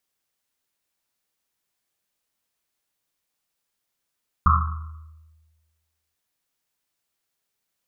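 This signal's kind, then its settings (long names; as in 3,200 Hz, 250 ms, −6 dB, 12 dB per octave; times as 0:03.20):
drum after Risset length 1.69 s, pitch 79 Hz, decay 1.45 s, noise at 1,200 Hz, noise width 290 Hz, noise 45%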